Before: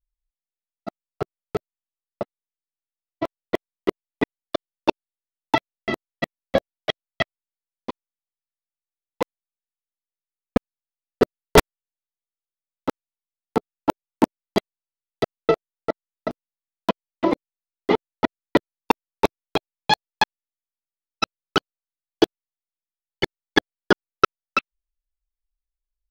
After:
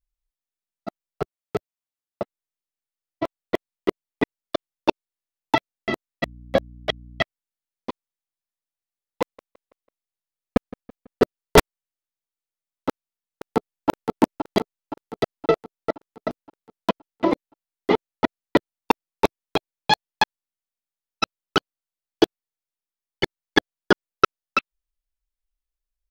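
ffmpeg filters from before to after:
ffmpeg -i in.wav -filter_complex "[0:a]asettb=1/sr,asplit=3[link_01][link_02][link_03];[link_01]atrim=end=1.224[link_04];[link_02]atrim=start=1.22:end=2.22,asetpts=PTS-STARTPTS,afade=type=in:duration=0.004:curve=qsin,afade=type=out:start_time=0.996:duration=0.004:curve=qsin,highpass=63[link_05];[link_03]atrim=start=2.216[link_06];[link_04][link_05]acrossfade=duration=0.004:curve1=hsin:curve2=qsin[link_07];[link_07][link_06]acrossfade=duration=0.004:curve1=qsin:curve2=hsin,asettb=1/sr,asplit=3[link_08][link_09][link_10];[link_08]atrim=end=6.234[link_11];[link_09]atrim=start=6.23:end=7.21,asetpts=PTS-STARTPTS,afade=type=in:duration=0.004:curve=qsin,afade=type=out:start_time=0.976:duration=0.004:curve=qsin,aeval=exprs='val(0)+0.00794*(sin(2*PI*60*n/s)+sin(2*PI*2*60*n/s)/2+sin(2*PI*3*60*n/s)/3+sin(2*PI*4*60*n/s)/4+sin(2*PI*5*60*n/s)/5)':channel_layout=same[link_12];[link_10]atrim=start=7.206[link_13];[link_11][link_12]acrossfade=duration=0.004:curve1=hsin:curve2=qsin[link_14];[link_14][link_13]acrossfade=duration=0.004:curve1=qsin:curve2=hsin,asettb=1/sr,asplit=3[link_15][link_16][link_17];[link_15]atrim=end=9.224[link_18];[link_16]atrim=start=9.22:end=11.22,asetpts=PTS-STARTPTS,afade=type=in:duration=0.004:curve=qsin,afade=type=out:start_time=1.996:duration=0.004:curve=qsin,asplit=2[link_19][link_20];[link_20]adelay=165,lowpass=frequency=4400:poles=1,volume=-20dB,asplit=2[link_21][link_22];[link_22]adelay=165,lowpass=frequency=4400:poles=1,volume=0.49,asplit=2[link_23][link_24];[link_24]adelay=165,lowpass=frequency=4400:poles=1,volume=0.49,asplit=2[link_25][link_26];[link_26]adelay=165,lowpass=frequency=4400:poles=1,volume=0.49[link_27];[link_19][link_21][link_23][link_25][link_27]amix=inputs=5:normalize=0,atrim=end_sample=88200[link_28];[link_17]atrim=start=11.216[link_29];[link_18][link_28]acrossfade=duration=0.004:curve1=hsin:curve2=qsin[link_30];[link_30][link_29]acrossfade=duration=0.004:curve1=qsin:curve2=hsin,asplit=2[link_31][link_32];[link_32]afade=type=in:start_time=12.89:duration=0.01,afade=type=out:start_time=13.89:duration=0.01,aecho=0:1:520|1040|1560|2080|2600|3120|3640:0.595662|0.327614|0.180188|0.0991033|0.0545068|0.0299787|0.0164883[link_33];[link_31][link_33]amix=inputs=2:normalize=0" out.wav

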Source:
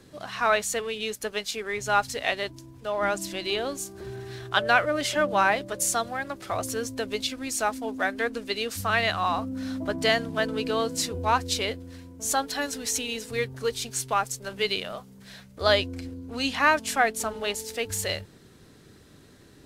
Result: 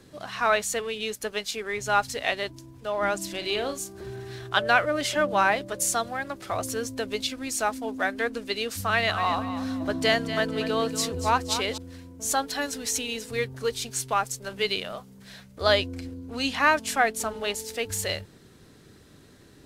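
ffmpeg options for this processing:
ffmpeg -i in.wav -filter_complex "[0:a]asettb=1/sr,asplit=3[link_01][link_02][link_03];[link_01]atrim=end=3.304[link_04];[link_02]atrim=start=3.3:end=3.78,asetpts=PTS-STARTPTS,afade=type=in:duration=0.004:curve=qsin,afade=type=out:start_time=0.476:duration=0.004:curve=qsin,asplit=2[link_05][link_06];[link_06]adelay=44,volume=-9dB[link_07];[link_05][link_07]amix=inputs=2:normalize=0,atrim=end_sample=21168[link_08];[link_03]atrim=start=3.776[link_09];[link_04][link_08]acrossfade=duration=0.004:curve1=hsin:curve2=qsin[link_10];[link_10][link_09]acrossfade=duration=0.004:curve1=qsin:curve2=hsin,asettb=1/sr,asplit=3[link_11][link_12][link_13];[link_11]atrim=end=8.854[link_14];[link_12]atrim=start=8.85:end=11.78,asetpts=PTS-STARTPTS,afade=type=in:duration=0.004:curve=qsin,afade=type=out:start_time=2.926:duration=0.004:curve=qsin,aecho=1:1:237|474|711:0.282|0.0874|0.0271,atrim=end_sample=129213[link_15];[link_13]atrim=start=11.776[link_16];[link_14][link_15]acrossfade=duration=0.004:curve1=hsin:curve2=qsin[link_17];[link_17][link_16]acrossfade=duration=0.004:curve1=qsin:curve2=hsin" out.wav

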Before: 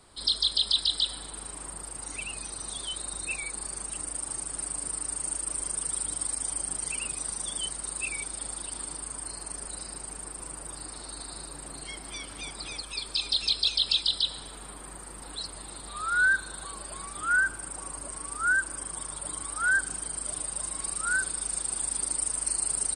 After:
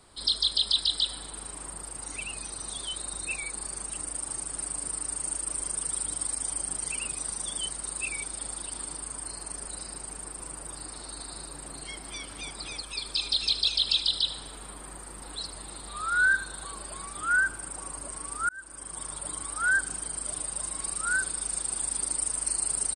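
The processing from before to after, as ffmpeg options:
ffmpeg -i in.wav -filter_complex "[0:a]asplit=3[link_01][link_02][link_03];[link_01]afade=type=out:start_time=13.03:duration=0.02[link_04];[link_02]aecho=1:1:77:0.2,afade=type=in:start_time=13.03:duration=0.02,afade=type=out:start_time=16.9:duration=0.02[link_05];[link_03]afade=type=in:start_time=16.9:duration=0.02[link_06];[link_04][link_05][link_06]amix=inputs=3:normalize=0,asplit=2[link_07][link_08];[link_07]atrim=end=18.49,asetpts=PTS-STARTPTS,afade=type=out:start_time=18.486:duration=0.004:curve=hsin[link_09];[link_08]atrim=start=18.49,asetpts=PTS-STARTPTS,afade=type=in:duration=0.57[link_10];[link_09][link_10]concat=n=2:v=0:a=1" out.wav

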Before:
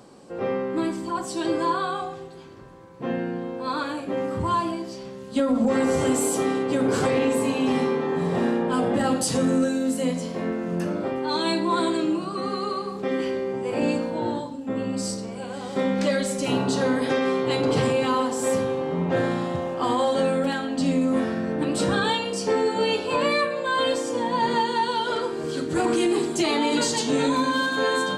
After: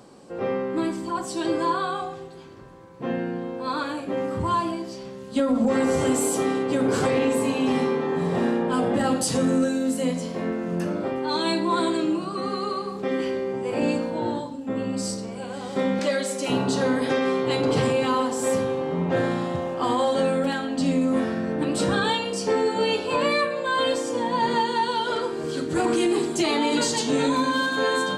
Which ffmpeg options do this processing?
ffmpeg -i in.wav -filter_complex "[0:a]asettb=1/sr,asplit=3[link_01][link_02][link_03];[link_01]atrim=end=15.994[link_04];[link_02]atrim=start=15.99:end=16.5,asetpts=PTS-STARTPTS,afade=type=in:duration=0.004:curve=qsin,afade=type=out:start_time=0.506:duration=0.004:curve=qsin,highpass=270[link_05];[link_03]atrim=start=16.496[link_06];[link_04][link_05]acrossfade=duration=0.004:curve1=hsin:curve2=qsin[link_07];[link_07][link_06]acrossfade=duration=0.004:curve1=qsin:curve2=hsin" out.wav

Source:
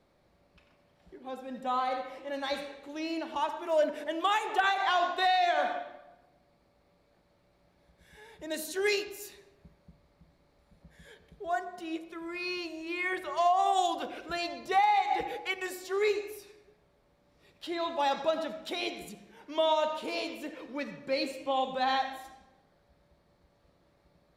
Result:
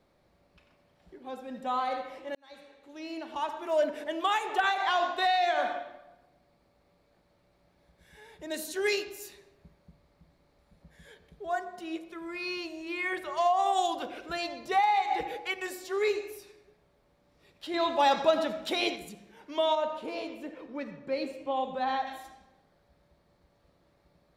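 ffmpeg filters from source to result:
ffmpeg -i in.wav -filter_complex "[0:a]asettb=1/sr,asplit=3[link_01][link_02][link_03];[link_01]atrim=end=19.754[link_04];[link_02]atrim=start=19.75:end=22.07,asetpts=PTS-STARTPTS,afade=type=in:duration=0.004:curve=qsin,afade=type=out:start_time=2.316:duration=0.004:curve=qsin,highshelf=frequency=2300:gain=-10.5[link_05];[link_03]atrim=start=22.066[link_06];[link_04][link_05]acrossfade=duration=0.004:curve1=hsin:curve2=qsin[link_07];[link_07][link_06]acrossfade=duration=0.004:curve1=qsin:curve2=hsin,asplit=4[link_08][link_09][link_10][link_11];[link_08]atrim=end=2.35,asetpts=PTS-STARTPTS,afade=type=out:start_time=2.346:duration=0.004:curve=hsin[link_12];[link_09]atrim=start=2.35:end=17.742,asetpts=PTS-STARTPTS,afade=type=in:duration=1.29[link_13];[link_10]atrim=start=17.738:end=18.962,asetpts=PTS-STARTPTS,volume=5dB[link_14];[link_11]atrim=start=18.958[link_15];[link_12][link_13]concat=n=2:v=0:a=1[link_16];[link_16][link_14]acrossfade=duration=0.004:curve1=hsin:curve2=hsin[link_17];[link_17][link_15]acrossfade=duration=0.004:curve1=hsin:curve2=hsin" out.wav

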